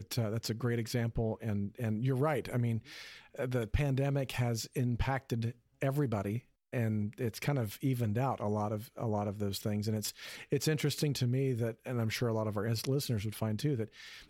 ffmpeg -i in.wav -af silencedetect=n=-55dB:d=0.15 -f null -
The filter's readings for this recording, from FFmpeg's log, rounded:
silence_start: 5.56
silence_end: 5.81 | silence_duration: 0.25
silence_start: 6.42
silence_end: 6.73 | silence_duration: 0.31